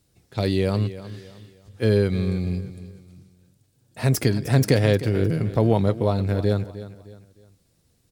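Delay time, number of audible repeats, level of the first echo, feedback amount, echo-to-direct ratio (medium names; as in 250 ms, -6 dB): 307 ms, 3, -14.5 dB, 36%, -14.0 dB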